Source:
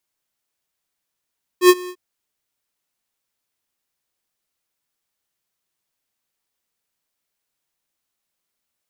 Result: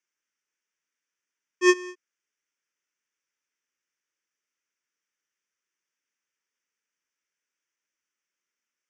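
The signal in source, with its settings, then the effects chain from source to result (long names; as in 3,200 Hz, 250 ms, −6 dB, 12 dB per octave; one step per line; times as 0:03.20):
note with an ADSR envelope square 361 Hz, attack 83 ms, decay 46 ms, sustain −23.5 dB, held 0.28 s, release 65 ms −7 dBFS
loudspeaker in its box 370–6,200 Hz, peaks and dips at 650 Hz +5 dB, 1,100 Hz −5 dB, 3,800 Hz +7 dB, 5,900 Hz +9 dB
phaser with its sweep stopped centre 1,700 Hz, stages 4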